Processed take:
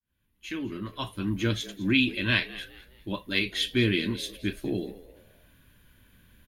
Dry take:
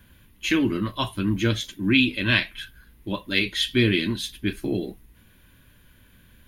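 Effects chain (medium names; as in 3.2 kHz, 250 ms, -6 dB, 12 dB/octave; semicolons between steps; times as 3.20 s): fade-in on the opening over 1.53 s; frequency-shifting echo 208 ms, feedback 34%, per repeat +90 Hz, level -18.5 dB; trim -4 dB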